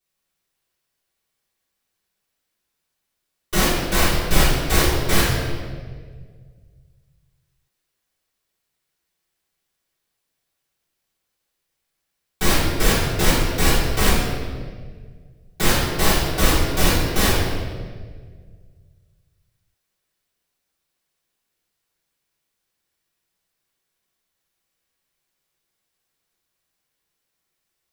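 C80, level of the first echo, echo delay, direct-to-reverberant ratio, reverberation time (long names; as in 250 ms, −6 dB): 2.0 dB, no echo audible, no echo audible, −12.0 dB, 1.7 s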